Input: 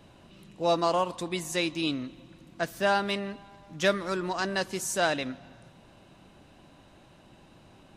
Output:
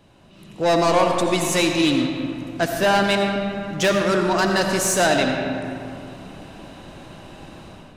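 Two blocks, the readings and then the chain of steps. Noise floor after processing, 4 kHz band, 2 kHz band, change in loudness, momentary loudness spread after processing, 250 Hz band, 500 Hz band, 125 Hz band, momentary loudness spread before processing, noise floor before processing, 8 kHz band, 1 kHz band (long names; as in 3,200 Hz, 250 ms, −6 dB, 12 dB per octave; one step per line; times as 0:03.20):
−47 dBFS, +9.0 dB, +9.0 dB, +9.0 dB, 17 LU, +11.5 dB, +9.5 dB, +11.5 dB, 12 LU, −56 dBFS, +11.5 dB, +8.5 dB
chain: automatic gain control gain up to 13.5 dB
soft clipping −13.5 dBFS, distortion −10 dB
comb and all-pass reverb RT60 2.6 s, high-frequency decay 0.5×, pre-delay 40 ms, DRR 3 dB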